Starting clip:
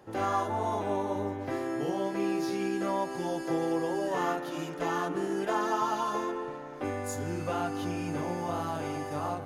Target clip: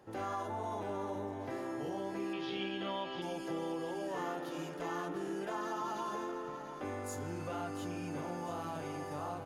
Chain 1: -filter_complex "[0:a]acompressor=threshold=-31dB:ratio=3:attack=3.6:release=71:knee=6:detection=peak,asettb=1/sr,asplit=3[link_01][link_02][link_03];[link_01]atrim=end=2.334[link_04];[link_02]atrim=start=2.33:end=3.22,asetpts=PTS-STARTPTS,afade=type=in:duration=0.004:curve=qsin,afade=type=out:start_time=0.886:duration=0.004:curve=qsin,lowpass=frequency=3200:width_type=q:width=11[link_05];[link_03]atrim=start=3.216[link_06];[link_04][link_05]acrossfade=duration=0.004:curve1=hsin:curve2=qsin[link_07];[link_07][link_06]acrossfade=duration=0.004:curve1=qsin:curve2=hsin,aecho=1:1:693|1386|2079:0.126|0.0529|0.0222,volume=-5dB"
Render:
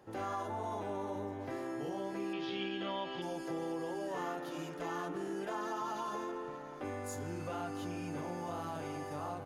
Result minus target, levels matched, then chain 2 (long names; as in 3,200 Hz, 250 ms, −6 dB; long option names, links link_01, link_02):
echo-to-direct −7 dB
-filter_complex "[0:a]acompressor=threshold=-31dB:ratio=3:attack=3.6:release=71:knee=6:detection=peak,asettb=1/sr,asplit=3[link_01][link_02][link_03];[link_01]atrim=end=2.334[link_04];[link_02]atrim=start=2.33:end=3.22,asetpts=PTS-STARTPTS,afade=type=in:duration=0.004:curve=qsin,afade=type=out:start_time=0.886:duration=0.004:curve=qsin,lowpass=frequency=3200:width_type=q:width=11[link_05];[link_03]atrim=start=3.216[link_06];[link_04][link_05]acrossfade=duration=0.004:curve1=hsin:curve2=qsin[link_07];[link_07][link_06]acrossfade=duration=0.004:curve1=qsin:curve2=hsin,aecho=1:1:693|1386|2079|2772:0.282|0.118|0.0497|0.0209,volume=-5dB"